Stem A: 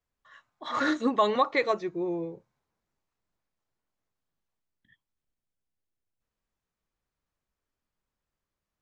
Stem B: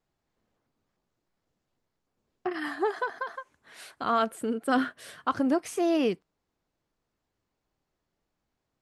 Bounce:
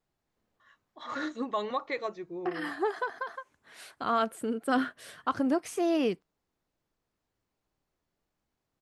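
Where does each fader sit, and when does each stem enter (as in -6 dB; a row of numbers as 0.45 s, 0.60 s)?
-8.0 dB, -2.0 dB; 0.35 s, 0.00 s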